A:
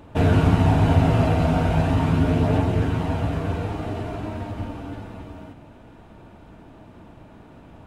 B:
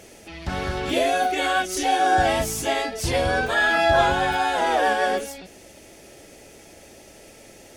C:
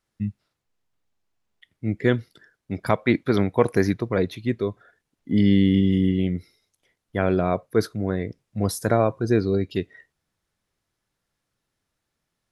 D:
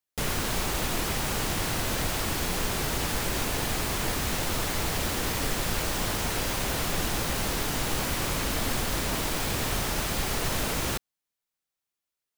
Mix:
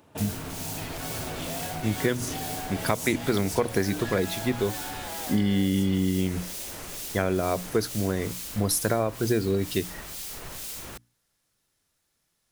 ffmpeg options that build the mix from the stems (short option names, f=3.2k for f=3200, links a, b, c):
-filter_complex "[0:a]acompressor=threshold=-22dB:ratio=6,highpass=120,volume=-10dB[a];[1:a]acompressor=threshold=-30dB:ratio=6,asoftclip=type=tanh:threshold=-33.5dB,adelay=500,volume=-2.5dB[b];[2:a]volume=0.5dB[c];[3:a]acrossover=split=2500[d][e];[d]aeval=exprs='val(0)*(1-0.7/2+0.7/2*cos(2*PI*2.2*n/s))':c=same[f];[e]aeval=exprs='val(0)*(1-0.7/2-0.7/2*cos(2*PI*2.2*n/s))':c=same[g];[f][g]amix=inputs=2:normalize=0,volume=-11dB[h];[a][b][c][h]amix=inputs=4:normalize=0,highshelf=f=4.2k:g=11,bandreject=f=60:t=h:w=6,bandreject=f=120:t=h:w=6,bandreject=f=180:t=h:w=6,bandreject=f=240:t=h:w=6,bandreject=f=300:t=h:w=6,acompressor=threshold=-20dB:ratio=6"